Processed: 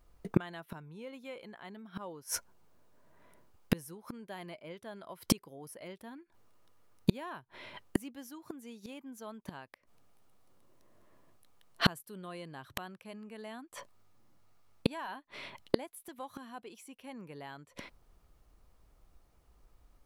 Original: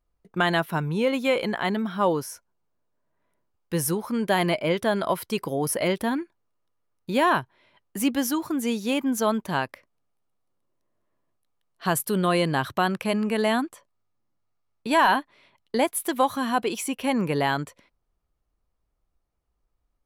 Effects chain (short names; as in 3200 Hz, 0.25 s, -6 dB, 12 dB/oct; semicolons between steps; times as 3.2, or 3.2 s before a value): flipped gate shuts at -24 dBFS, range -35 dB; gain +12.5 dB